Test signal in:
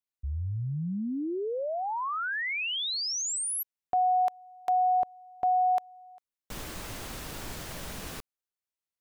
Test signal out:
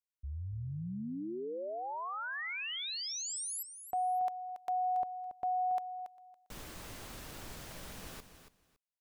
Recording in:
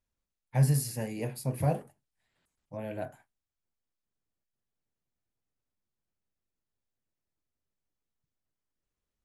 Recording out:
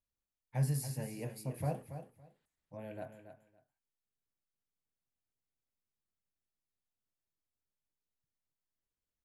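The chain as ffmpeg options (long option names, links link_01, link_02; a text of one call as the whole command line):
ffmpeg -i in.wav -af "aecho=1:1:280|560:0.299|0.0537,volume=-8dB" out.wav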